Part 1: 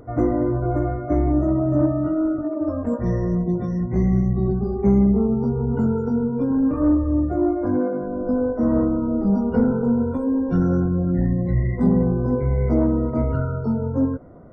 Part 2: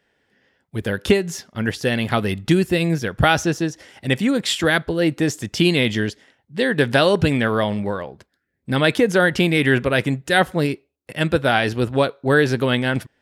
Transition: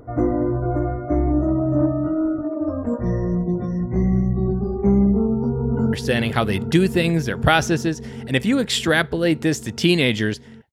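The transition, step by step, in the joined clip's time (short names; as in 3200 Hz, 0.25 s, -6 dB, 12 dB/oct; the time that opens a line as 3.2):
part 1
5.26–5.93 echo throw 0.39 s, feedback 85%, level -8 dB
5.93 switch to part 2 from 1.69 s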